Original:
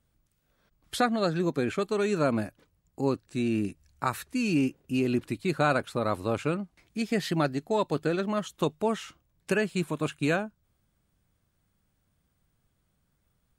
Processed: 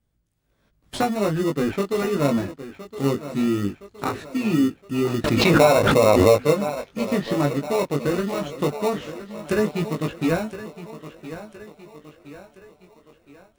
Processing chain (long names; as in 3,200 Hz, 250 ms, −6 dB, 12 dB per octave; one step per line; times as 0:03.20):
0:05.41–0:06.96: gain on a spectral selection 450–6,700 Hz +12 dB
treble cut that deepens with the level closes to 680 Hz, closed at −18.5 dBFS
on a send: feedback echo with a high-pass in the loop 1,016 ms, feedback 50%, high-pass 150 Hz, level −12.5 dB
on the sum: automatic gain control gain up to 6 dB
in parallel at −4 dB: sample-rate reduction 1,600 Hz, jitter 0%
on the sum: chorus effect 0.19 Hz, delay 18 ms, depth 3.4 ms
0:05.24–0:06.40: background raised ahead of every attack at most 22 dB per second
level −1.5 dB